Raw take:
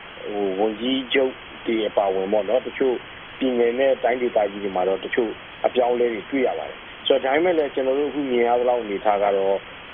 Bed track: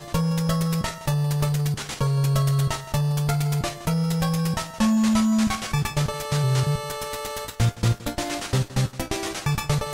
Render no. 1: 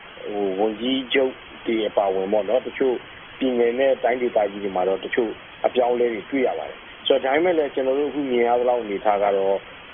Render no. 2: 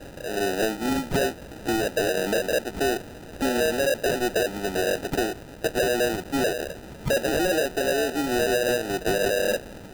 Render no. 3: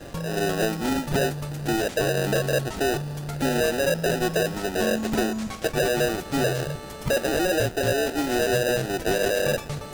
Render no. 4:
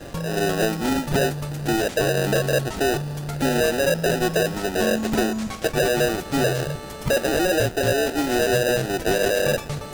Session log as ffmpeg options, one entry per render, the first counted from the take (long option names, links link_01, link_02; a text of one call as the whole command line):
ffmpeg -i in.wav -af "afftdn=noise_reduction=6:noise_floor=-39" out.wav
ffmpeg -i in.wav -af "aresample=11025,asoftclip=type=tanh:threshold=-18dB,aresample=44100,acrusher=samples=40:mix=1:aa=0.000001" out.wav
ffmpeg -i in.wav -i bed.wav -filter_complex "[1:a]volume=-9.5dB[link_01];[0:a][link_01]amix=inputs=2:normalize=0" out.wav
ffmpeg -i in.wav -af "volume=2.5dB" out.wav